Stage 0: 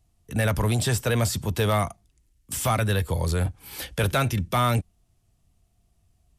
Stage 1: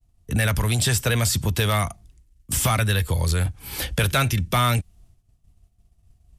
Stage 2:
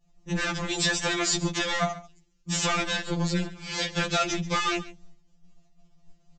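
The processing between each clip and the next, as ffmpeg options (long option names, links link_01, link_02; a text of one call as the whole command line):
ffmpeg -i in.wav -filter_complex "[0:a]agate=range=-33dB:threshold=-57dB:ratio=3:detection=peak,lowshelf=frequency=130:gain=10,acrossover=split=1400[link_01][link_02];[link_01]acompressor=threshold=-26dB:ratio=6[link_03];[link_03][link_02]amix=inputs=2:normalize=0,volume=6dB" out.wav
ffmpeg -i in.wav -af "aresample=16000,asoftclip=type=tanh:threshold=-24.5dB,aresample=44100,aecho=1:1:137:0.133,afftfilt=real='re*2.83*eq(mod(b,8),0)':imag='im*2.83*eq(mod(b,8),0)':win_size=2048:overlap=0.75,volume=7dB" out.wav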